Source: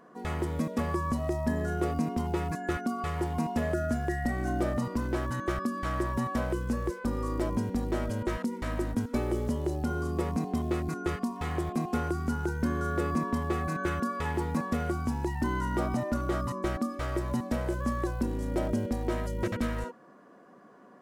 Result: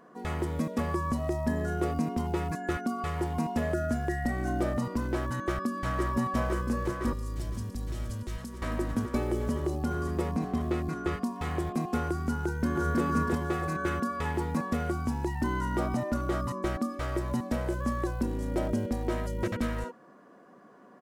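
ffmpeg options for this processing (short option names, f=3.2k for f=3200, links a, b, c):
-filter_complex "[0:a]asplit=2[a][b];[b]afade=t=in:st=5.32:d=0.01,afade=t=out:st=6.1:d=0.01,aecho=0:1:510|1020|1530|2040|2550|3060|3570|4080|4590|5100|5610|6120:0.501187|0.426009|0.362108|0.307792|0.261623|0.222379|0.189023|0.160669|0.136569|0.116083|0.0986709|0.0838703[c];[a][c]amix=inputs=2:normalize=0,asettb=1/sr,asplit=3[d][e][f];[d]atrim=end=7.134[g];[e]atrim=start=7.13:end=8.62,asetpts=PTS-STARTPTS,afade=t=in:d=0.004:c=qsin,afade=t=out:st=1.486:d=0.004:c=qsin,acrossover=split=150|3000[h][i][j];[i]acompressor=threshold=-46dB:ratio=4:attack=3.2:release=140:knee=2.83:detection=peak[k];[h][k][j]amix=inputs=3:normalize=0[l];[f]atrim=start=8.616[m];[g][l]acrossfade=d=0.004:c1=hsin:c2=qsin[n];[n][m]acrossfade=d=0.004:c1=qsin:c2=hsin,asettb=1/sr,asplit=3[o][p][q];[o]atrim=end=10.284[r];[p]atrim=start=10.28:end=11.23,asetpts=PTS-STARTPTS,afade=t=in:d=0.004:c=qsin,afade=t=out:st=0.946:d=0.004:c=qsin,acrossover=split=4700[s][t];[t]acompressor=threshold=-55dB:ratio=4:attack=1:release=60[u];[s][u]amix=inputs=2:normalize=0[v];[q]atrim=start=11.226[w];[r][v]acrossfade=d=0.004:c1=hsin:c2=qsin[x];[x][w]acrossfade=d=0.004:c1=qsin:c2=hsin,asplit=2[y][z];[z]afade=t=in:st=12.43:d=0.01,afade=t=out:st=13.03:d=0.01,aecho=0:1:320|640|960|1280|1600|1920:0.794328|0.357448|0.160851|0.0723832|0.0325724|0.0146576[aa];[y][aa]amix=inputs=2:normalize=0"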